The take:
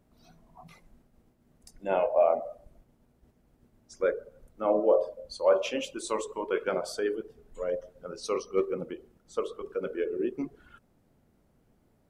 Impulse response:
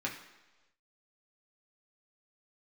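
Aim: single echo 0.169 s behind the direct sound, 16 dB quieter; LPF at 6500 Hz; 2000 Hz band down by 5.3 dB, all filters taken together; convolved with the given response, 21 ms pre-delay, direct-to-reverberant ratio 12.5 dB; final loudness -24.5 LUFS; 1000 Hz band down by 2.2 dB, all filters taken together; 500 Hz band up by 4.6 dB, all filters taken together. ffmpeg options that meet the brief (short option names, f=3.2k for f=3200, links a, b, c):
-filter_complex "[0:a]lowpass=6.5k,equalizer=f=500:t=o:g=7.5,equalizer=f=1k:t=o:g=-6.5,equalizer=f=2k:t=o:g=-5.5,aecho=1:1:169:0.158,asplit=2[a][b];[1:a]atrim=start_sample=2205,adelay=21[c];[b][c]afir=irnorm=-1:irlink=0,volume=-16.5dB[d];[a][d]amix=inputs=2:normalize=0,volume=1dB"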